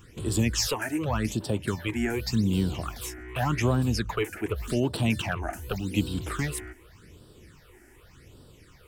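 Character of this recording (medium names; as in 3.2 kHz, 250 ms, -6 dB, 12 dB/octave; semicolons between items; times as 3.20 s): phasing stages 8, 0.86 Hz, lowest notch 140–2100 Hz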